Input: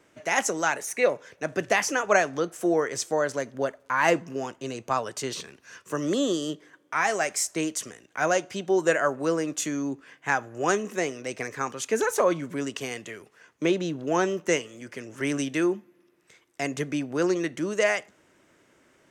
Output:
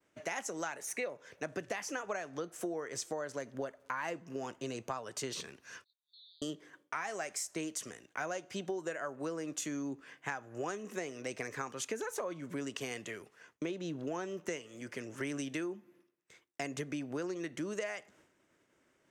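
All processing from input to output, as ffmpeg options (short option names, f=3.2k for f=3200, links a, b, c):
-filter_complex "[0:a]asettb=1/sr,asplit=3[a][b][c];[a]atrim=end=5.844[d];[b]atrim=start=5.84:end=6.42,asetpts=PTS-STARTPTS,afade=t=in:d=0.004:c=qsin,afade=t=out:st=0.576:d=0.004:c=qsin,asuperpass=centerf=4000:order=8:qfactor=5.2,acompressor=threshold=-57dB:ratio=2:attack=3.2:release=140:knee=1:detection=peak[e];[c]atrim=start=6.416[f];[d][e]acrossfade=d=0.004:c1=hsin:c2=qsin[g];[g][f]acrossfade=d=0.004:c1=qsin:c2=hsin,agate=range=-33dB:threshold=-54dB:ratio=3:detection=peak,acompressor=threshold=-31dB:ratio=12,volume=-3.5dB"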